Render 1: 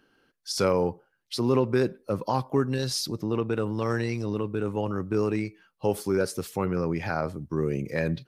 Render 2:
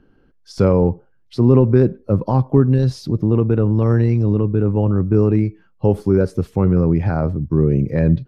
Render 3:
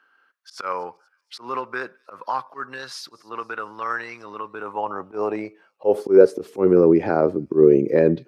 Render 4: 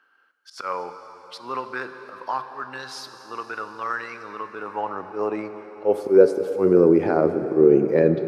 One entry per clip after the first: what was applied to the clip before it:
tilt EQ -4.5 dB/octave; trim +2.5 dB
slow attack 104 ms; high-pass sweep 1.3 kHz -> 370 Hz, 4.24–6.45 s; feedback echo behind a high-pass 237 ms, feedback 53%, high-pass 4.5 kHz, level -21 dB; trim +1.5 dB
plate-style reverb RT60 4.9 s, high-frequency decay 0.9×, DRR 8.5 dB; trim -1.5 dB

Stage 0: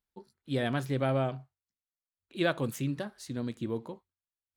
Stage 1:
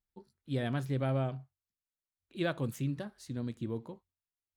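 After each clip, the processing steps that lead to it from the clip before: bass shelf 170 Hz +9.5 dB; trim -6 dB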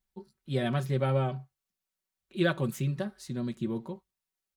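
comb 5.3 ms, depth 72%; trim +3.5 dB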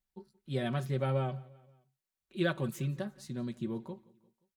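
feedback delay 175 ms, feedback 53%, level -23.5 dB; trim -4 dB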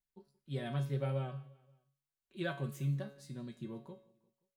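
feedback comb 140 Hz, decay 0.49 s, harmonics all, mix 80%; trim +4 dB

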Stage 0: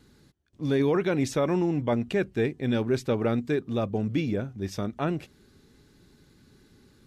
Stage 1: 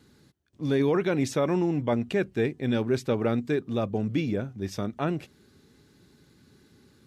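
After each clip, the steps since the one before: high-pass 71 Hz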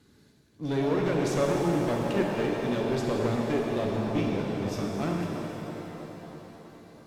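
feedback echo behind a low-pass 324 ms, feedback 63%, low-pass 980 Hz, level -11.5 dB; one-sided clip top -26.5 dBFS; pitch-shifted reverb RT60 3.3 s, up +7 st, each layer -8 dB, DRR -1 dB; trim -3 dB

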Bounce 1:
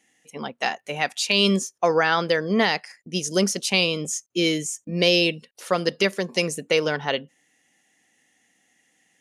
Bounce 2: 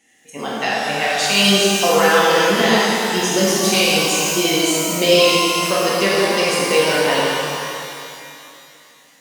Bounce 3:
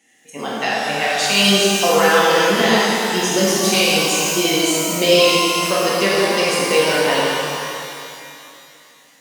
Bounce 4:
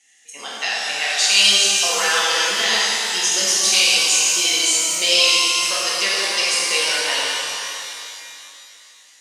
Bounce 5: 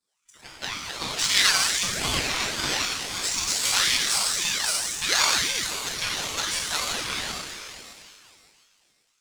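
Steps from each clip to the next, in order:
in parallel at +2.5 dB: compression, threshold -28 dBFS, peak gain reduction 13 dB; on the sum: pitch-shifted reverb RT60 2.6 s, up +12 st, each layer -8 dB, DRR -7.5 dB; trim -4.5 dB
high-pass 99 Hz
frequency weighting ITU-R 468; trim -7 dB
power-law waveshaper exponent 1.4; ring modulator with a swept carrier 1.1 kHz, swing 55%, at 1.9 Hz

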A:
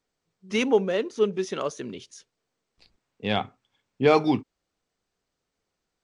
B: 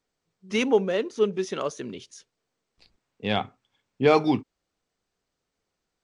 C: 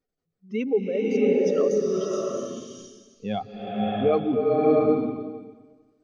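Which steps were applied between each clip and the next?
no audible change
spectral contrast enhancement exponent 1.9; band-stop 920 Hz, Q 6; swelling reverb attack 690 ms, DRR -5 dB; trim -2.5 dB

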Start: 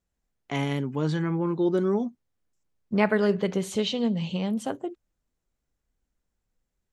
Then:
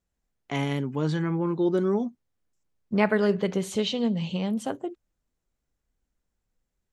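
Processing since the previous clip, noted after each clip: no audible change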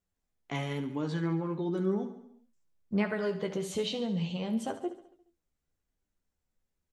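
compression 2:1, threshold -26 dBFS, peak gain reduction 6 dB; on a send: feedback delay 70 ms, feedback 55%, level -12 dB; on the sum: flange 0.99 Hz, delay 9.9 ms, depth 3.7 ms, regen +31%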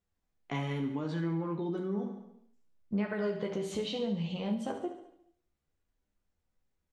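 treble shelf 6.4 kHz -10.5 dB; compression, threshold -32 dBFS, peak gain reduction 8.5 dB; reverberation RT60 0.55 s, pre-delay 5 ms, DRR 6 dB; trim +1 dB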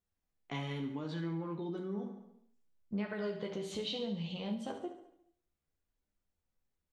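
dynamic bell 3.8 kHz, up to +7 dB, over -59 dBFS, Q 1.5; trim -5 dB

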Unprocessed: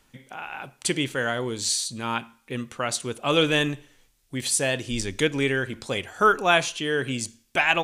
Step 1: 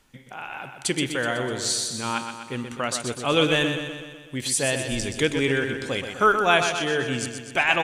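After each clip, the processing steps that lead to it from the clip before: treble shelf 12 kHz -3 dB; on a send: feedback delay 125 ms, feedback 59%, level -7.5 dB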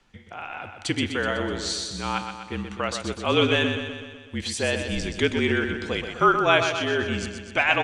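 low-pass 5.2 kHz 12 dB/octave; frequency shift -39 Hz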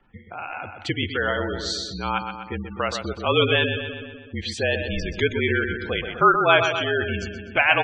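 spectral gate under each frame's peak -20 dB strong; level-controlled noise filter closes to 2.3 kHz, open at -18 dBFS; dynamic bell 250 Hz, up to -7 dB, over -39 dBFS, Q 1.7; trim +3 dB

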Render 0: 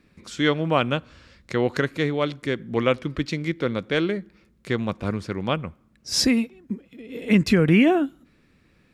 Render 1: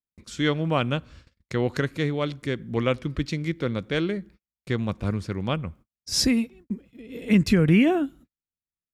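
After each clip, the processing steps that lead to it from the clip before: bass shelf 140 Hz +11.5 dB; gate -42 dBFS, range -45 dB; treble shelf 4.8 kHz +5.5 dB; trim -4.5 dB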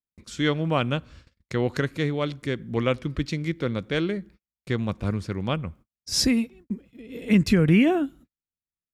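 no audible change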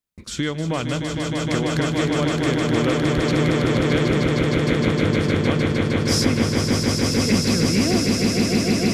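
compression, threshold -30 dBFS, peak gain reduction 15 dB; on a send: echo with a slow build-up 154 ms, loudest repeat 8, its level -4.5 dB; on the sum: trim +8.5 dB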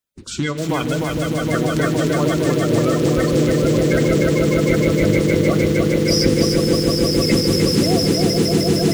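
coarse spectral quantiser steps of 30 dB; reverberation RT60 2.1 s, pre-delay 4 ms, DRR 13 dB; bit-crushed delay 302 ms, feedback 35%, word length 6-bit, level -4 dB; trim +2.5 dB

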